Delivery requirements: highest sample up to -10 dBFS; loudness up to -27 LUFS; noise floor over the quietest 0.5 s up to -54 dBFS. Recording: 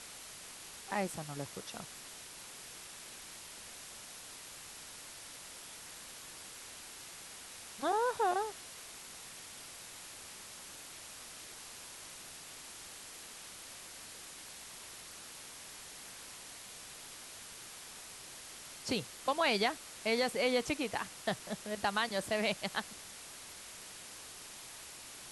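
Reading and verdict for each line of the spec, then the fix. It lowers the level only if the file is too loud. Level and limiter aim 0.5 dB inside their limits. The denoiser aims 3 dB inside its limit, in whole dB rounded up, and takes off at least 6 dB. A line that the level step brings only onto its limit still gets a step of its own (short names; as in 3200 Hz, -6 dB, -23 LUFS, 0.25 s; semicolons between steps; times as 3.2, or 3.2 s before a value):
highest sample -19.0 dBFS: OK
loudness -40.0 LUFS: OK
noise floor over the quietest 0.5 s -50 dBFS: fail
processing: denoiser 7 dB, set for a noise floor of -50 dBFS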